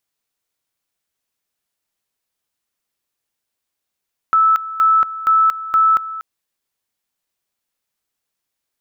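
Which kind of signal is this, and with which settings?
two-level tone 1.31 kHz -9.5 dBFS, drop 15 dB, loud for 0.23 s, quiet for 0.24 s, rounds 4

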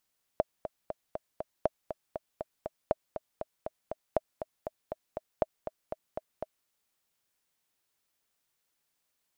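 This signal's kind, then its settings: metronome 239 bpm, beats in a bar 5, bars 5, 629 Hz, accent 10 dB -11.5 dBFS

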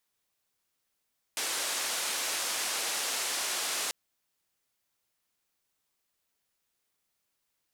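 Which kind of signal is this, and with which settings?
noise band 410–9400 Hz, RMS -32.5 dBFS 2.54 s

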